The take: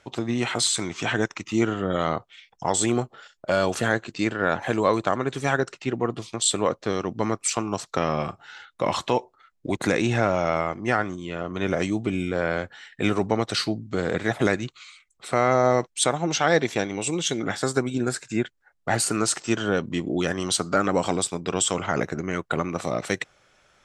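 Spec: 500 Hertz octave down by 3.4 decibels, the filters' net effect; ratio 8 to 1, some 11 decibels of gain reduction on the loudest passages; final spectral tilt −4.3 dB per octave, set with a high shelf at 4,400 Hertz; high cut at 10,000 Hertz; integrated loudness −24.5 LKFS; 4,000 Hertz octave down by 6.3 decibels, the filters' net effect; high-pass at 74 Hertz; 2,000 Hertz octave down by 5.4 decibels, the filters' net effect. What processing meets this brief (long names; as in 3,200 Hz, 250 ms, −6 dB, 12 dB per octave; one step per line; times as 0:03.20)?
high-pass filter 74 Hz
low-pass filter 10,000 Hz
parametric band 500 Hz −4 dB
parametric band 2,000 Hz −6 dB
parametric band 4,000 Hz −7.5 dB
high-shelf EQ 4,400 Hz +3 dB
downward compressor 8 to 1, threshold −30 dBFS
level +11 dB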